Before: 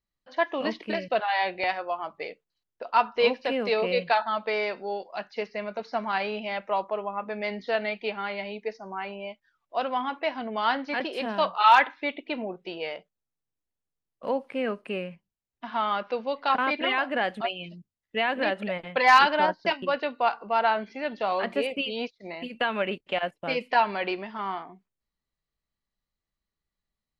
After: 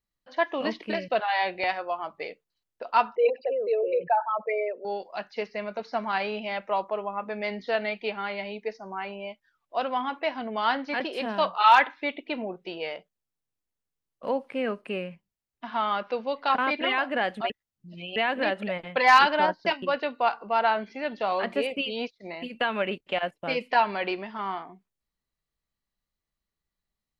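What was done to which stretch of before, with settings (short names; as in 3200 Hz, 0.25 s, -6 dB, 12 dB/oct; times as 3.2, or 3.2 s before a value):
3.15–4.85 formant sharpening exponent 3
17.5–18.16 reverse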